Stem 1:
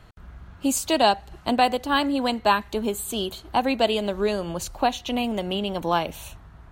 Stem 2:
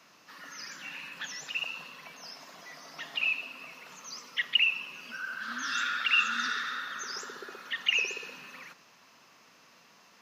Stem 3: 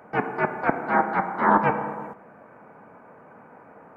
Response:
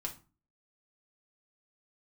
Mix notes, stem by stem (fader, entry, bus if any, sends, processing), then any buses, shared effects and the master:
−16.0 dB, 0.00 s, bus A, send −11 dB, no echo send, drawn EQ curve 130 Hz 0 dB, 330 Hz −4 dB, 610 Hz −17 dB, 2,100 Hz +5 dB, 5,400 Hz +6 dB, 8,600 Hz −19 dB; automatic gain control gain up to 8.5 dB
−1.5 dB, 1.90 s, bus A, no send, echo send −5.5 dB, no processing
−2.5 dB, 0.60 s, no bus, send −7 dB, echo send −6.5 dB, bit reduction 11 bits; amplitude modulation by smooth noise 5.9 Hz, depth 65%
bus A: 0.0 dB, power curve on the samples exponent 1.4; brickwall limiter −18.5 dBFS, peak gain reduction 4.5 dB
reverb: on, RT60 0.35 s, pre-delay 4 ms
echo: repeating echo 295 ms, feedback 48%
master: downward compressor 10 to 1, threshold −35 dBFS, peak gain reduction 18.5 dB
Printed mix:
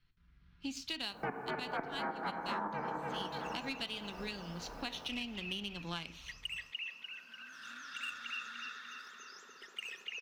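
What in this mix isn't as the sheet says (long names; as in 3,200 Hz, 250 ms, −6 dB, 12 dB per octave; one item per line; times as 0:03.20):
stem 2 −1.5 dB → −11.5 dB
stem 3: entry 0.60 s → 1.10 s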